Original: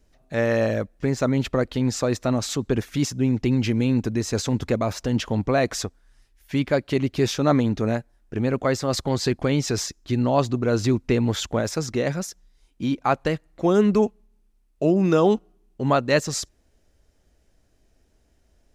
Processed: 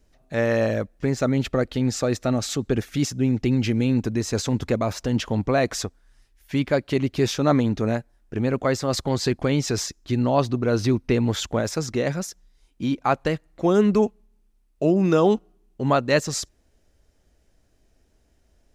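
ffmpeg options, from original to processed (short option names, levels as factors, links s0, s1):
-filter_complex "[0:a]asettb=1/sr,asplit=3[s0][s1][s2];[s0]atrim=end=1.134[s3];[s1]atrim=start=1.13:end=3.98,asetpts=PTS-STARTPTS,afade=t=in:d=0.004:c=qsin,afade=t=out:st=2.846:d=0.004:c=qsin,bandreject=f=1000:w=6.9[s4];[s2]atrim=start=3.976[s5];[s3][s4]acrossfade=d=0.004:c1=hsin:c2=qsin[s6];[s6][s5]acrossfade=d=0.004:c1=qsin:c2=hsin,asettb=1/sr,asplit=3[s7][s8][s9];[s7]atrim=end=10.324[s10];[s8]atrim=start=10.32:end=11.15,asetpts=PTS-STARTPTS,afade=t=in:d=0.004:c=qsin,afade=t=out:st=0.826:d=0.004:c=qsin,bandreject=f=7200:w=5.8[s11];[s9]atrim=start=11.146[s12];[s10][s11]acrossfade=d=0.004:c1=hsin:c2=qsin[s13];[s13][s12]acrossfade=d=0.004:c1=qsin:c2=hsin"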